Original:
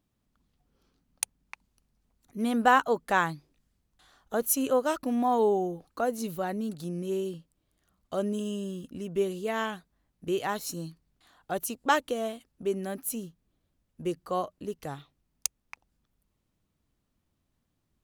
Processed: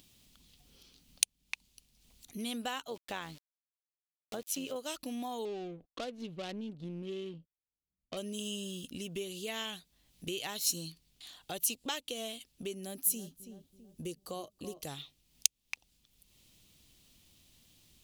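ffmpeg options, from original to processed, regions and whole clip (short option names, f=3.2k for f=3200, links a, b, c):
-filter_complex "[0:a]asettb=1/sr,asplit=3[a][b][c];[a]atrim=end=2.904[d];[b]atrim=start=2.9:end=4.76,asetpts=PTS-STARTPTS,afade=t=in:d=0.004:c=qsin,afade=t=out:st=1.856:d=0.004:c=qsin,aemphasis=mode=reproduction:type=75fm,aeval=exprs='val(0)*gte(abs(val(0)),0.00596)':c=same,tremolo=f=95:d=0.462[e];[c]atrim=start=4.756[f];[d][e]acrossfade=d=0.004:c1=hsin:c2=qsin[g];[g][f]acrossfade=d=0.004:c1=qsin:c2=hsin,asettb=1/sr,asplit=3[h][i][j];[h]atrim=end=5.454[k];[i]atrim=start=5.45:end=8.17,asetpts=PTS-STARTPTS,afade=t=in:d=0.004:c=qsin,afade=t=out:st=2.716:d=0.004:c=qsin,agate=range=-36dB:threshold=-58dB:ratio=16:release=100:detection=peak,bandreject=f=860:w=5.2,adynamicsmooth=sensitivity=5.5:basefreq=520[l];[j]atrim=start=8.166[m];[k][l]acrossfade=d=0.004:c1=hsin:c2=qsin[n];[n][m]acrossfade=d=0.004:c1=qsin:c2=hsin,asettb=1/sr,asplit=3[o][p][q];[o]atrim=end=12.744[r];[p]atrim=start=12.74:end=14.87,asetpts=PTS-STARTPTS,afade=t=in:d=0.004:c=qsin,afade=t=out:st=2.126:d=0.004:c=qsin,equalizer=f=2.4k:t=o:w=2:g=-7.5,asplit=2[s][t];[t]adelay=329,lowpass=f=1.2k:p=1,volume=-14dB,asplit=2[u][v];[v]adelay=329,lowpass=f=1.2k:p=1,volume=0.39,asplit=2[w][x];[x]adelay=329,lowpass=f=1.2k:p=1,volume=0.39,asplit=2[y][z];[z]adelay=329,lowpass=f=1.2k:p=1,volume=0.39[aa];[s][u][w][y][aa]amix=inputs=5:normalize=0,atrim=end_sample=93933[ab];[q]atrim=start=14.866[ac];[r][ab]acrossfade=d=0.004:c1=hsin:c2=qsin[ad];[ad][ac]acrossfade=d=0.004:c1=qsin:c2=hsin,acompressor=threshold=-41dB:ratio=3,highshelf=f=2.1k:t=q:w=1.5:g=12.5,acompressor=mode=upward:threshold=-54dB:ratio=2.5"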